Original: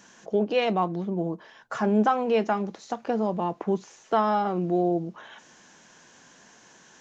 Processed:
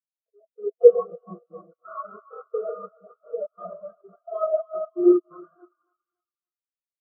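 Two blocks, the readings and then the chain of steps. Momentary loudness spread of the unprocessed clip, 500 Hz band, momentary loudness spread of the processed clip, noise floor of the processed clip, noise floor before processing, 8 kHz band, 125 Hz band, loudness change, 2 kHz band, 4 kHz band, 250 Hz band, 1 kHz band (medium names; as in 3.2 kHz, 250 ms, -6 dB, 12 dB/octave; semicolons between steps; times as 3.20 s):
11 LU, +4.5 dB, 22 LU, under -85 dBFS, -55 dBFS, no reading, under -20 dB, +3.5 dB, under -20 dB, under -40 dB, -1.0 dB, -12.0 dB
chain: local Wiener filter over 9 samples; treble shelf 2.3 kHz +5 dB; fuzz box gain 44 dB, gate -49 dBFS; static phaser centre 1.3 kHz, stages 8; algorithmic reverb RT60 3 s, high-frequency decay 0.35×, pre-delay 95 ms, DRR -9 dB; dynamic bell 1.2 kHz, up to +5 dB, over -25 dBFS, Q 3; trance gate ".xxx.x.xxx.x.xx" 130 bpm -24 dB; high-pass 160 Hz 12 dB/octave; on a send: thinning echo 280 ms, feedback 73%, high-pass 510 Hz, level -5 dB; on the sum: spectral contrast expander 4:1; trim -7.5 dB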